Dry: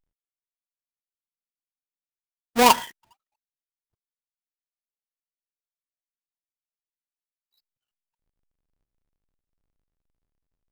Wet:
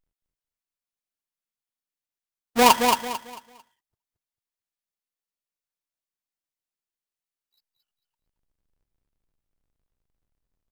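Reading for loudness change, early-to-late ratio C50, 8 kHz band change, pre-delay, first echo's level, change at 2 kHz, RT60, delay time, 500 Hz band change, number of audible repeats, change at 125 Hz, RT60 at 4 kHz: 0.0 dB, none, +1.5 dB, none, -5.0 dB, +1.5 dB, none, 0.223 s, +1.5 dB, 3, +1.0 dB, none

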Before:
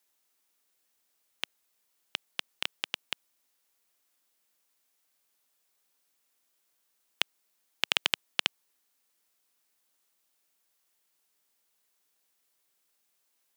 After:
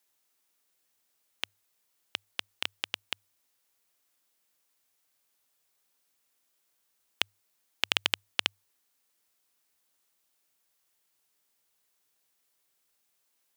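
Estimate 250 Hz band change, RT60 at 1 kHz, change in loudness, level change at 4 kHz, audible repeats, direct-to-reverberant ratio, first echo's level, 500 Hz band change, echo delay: 0.0 dB, none, 0.0 dB, 0.0 dB, none, none, none, 0.0 dB, none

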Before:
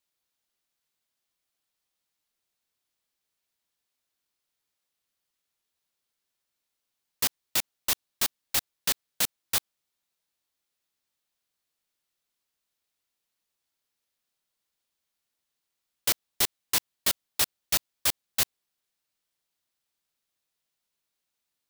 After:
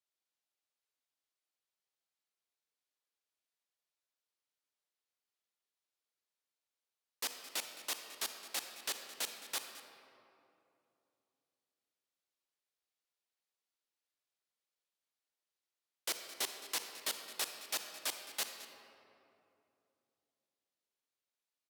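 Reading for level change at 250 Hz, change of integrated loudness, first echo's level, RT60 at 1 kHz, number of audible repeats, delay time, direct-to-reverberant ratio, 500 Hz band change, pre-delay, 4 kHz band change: -13.0 dB, -12.0 dB, -16.5 dB, 2.6 s, 1, 0.216 s, 6.0 dB, -7.5 dB, 38 ms, -9.5 dB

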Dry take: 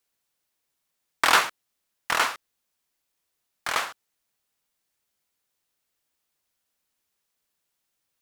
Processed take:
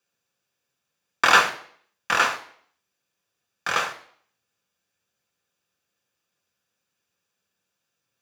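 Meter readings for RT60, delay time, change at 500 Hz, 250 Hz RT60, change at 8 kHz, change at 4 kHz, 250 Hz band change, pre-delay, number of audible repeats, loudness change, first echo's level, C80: 0.60 s, none, +4.0 dB, 0.60 s, 0.0 dB, +1.0 dB, +3.0 dB, 3 ms, none, +3.0 dB, none, 16.5 dB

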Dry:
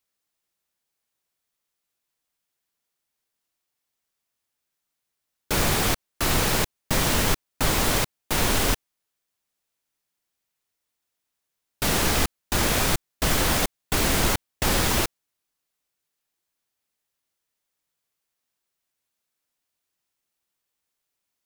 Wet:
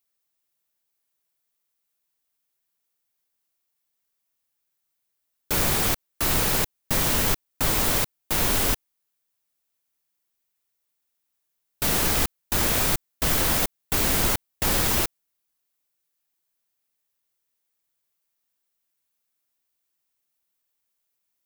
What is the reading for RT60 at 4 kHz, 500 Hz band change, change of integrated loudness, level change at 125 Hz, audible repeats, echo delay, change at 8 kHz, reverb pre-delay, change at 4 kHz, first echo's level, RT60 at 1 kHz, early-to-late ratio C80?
none, -2.5 dB, +1.0 dB, -2.5 dB, none, none, 0.0 dB, none, -2.0 dB, none, none, none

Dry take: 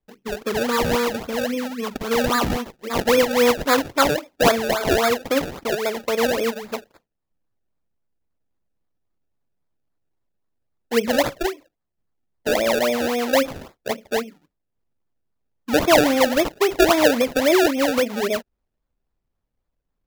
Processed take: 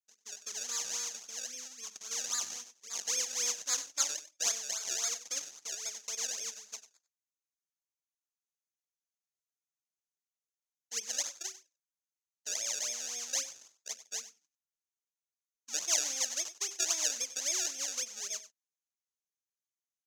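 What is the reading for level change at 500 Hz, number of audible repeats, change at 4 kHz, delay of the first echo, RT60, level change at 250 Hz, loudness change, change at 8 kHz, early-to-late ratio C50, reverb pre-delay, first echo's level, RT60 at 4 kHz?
-33.0 dB, 1, -10.0 dB, 95 ms, none, -38.5 dB, -13.5 dB, +2.0 dB, none, none, -15.0 dB, none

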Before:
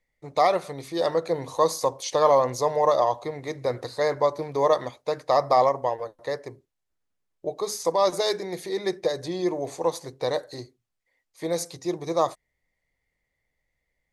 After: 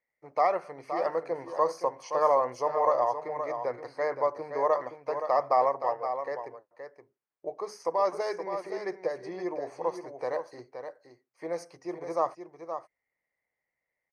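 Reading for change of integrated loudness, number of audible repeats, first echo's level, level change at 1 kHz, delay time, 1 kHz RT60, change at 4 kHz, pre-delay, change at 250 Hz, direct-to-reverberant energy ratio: -5.0 dB, 1, -8.5 dB, -3.0 dB, 0.521 s, none, -17.0 dB, none, -8.5 dB, none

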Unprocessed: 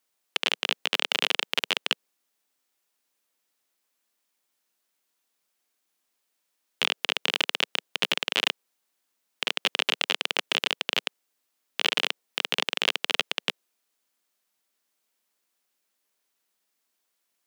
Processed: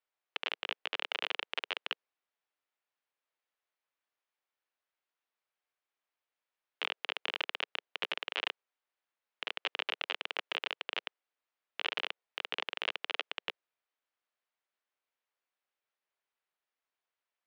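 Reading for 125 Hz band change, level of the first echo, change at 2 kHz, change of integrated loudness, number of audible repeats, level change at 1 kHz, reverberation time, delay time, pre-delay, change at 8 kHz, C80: n/a, none, -9.0 dB, -10.5 dB, none, -7.5 dB, none, none, none, -23.5 dB, none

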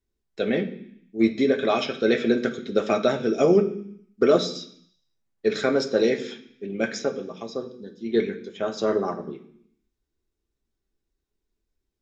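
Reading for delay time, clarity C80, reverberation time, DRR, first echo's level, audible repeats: none, 15.5 dB, 0.65 s, 3.0 dB, none, none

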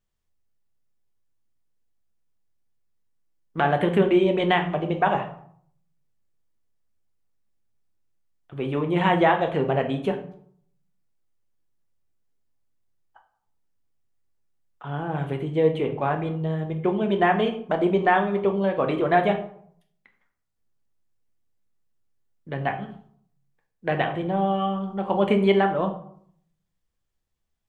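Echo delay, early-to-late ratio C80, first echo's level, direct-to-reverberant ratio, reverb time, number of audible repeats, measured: none, 14.0 dB, none, 4.0 dB, 0.65 s, none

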